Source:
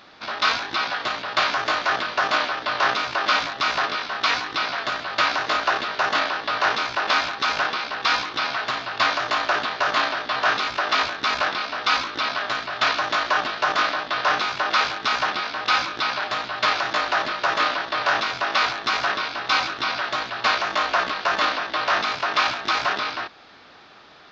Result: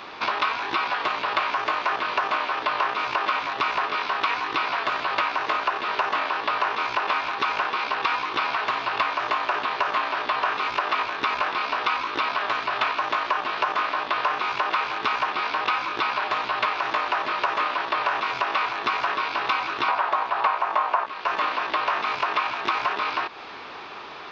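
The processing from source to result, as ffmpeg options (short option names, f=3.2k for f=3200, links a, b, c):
-filter_complex "[0:a]asettb=1/sr,asplit=3[a][b][c];[a]atrim=end=19.884[d];[b]atrim=start=19.88:end=21.06,asetpts=PTS-STARTPTS,afade=t=in:d=0.004:c=qsin,afade=t=out:st=1.176:d=0.004:c=qsin,equalizer=f=850:t=o:w=2:g=14[e];[c]atrim=start=21.056[f];[d][e]acrossfade=d=0.004:c1=hsin:c2=qsin[g];[g][f]acrossfade=d=0.004:c1=qsin:c2=hsin,acrossover=split=3500[h][i];[i]acompressor=threshold=-36dB:ratio=4:attack=1:release=60[j];[h][j]amix=inputs=2:normalize=0,equalizer=f=400:t=o:w=0.67:g=8,equalizer=f=1k:t=o:w=0.67:g=11,equalizer=f=2.5k:t=o:w=0.67:g=8,acompressor=threshold=-26dB:ratio=6,volume=3.5dB"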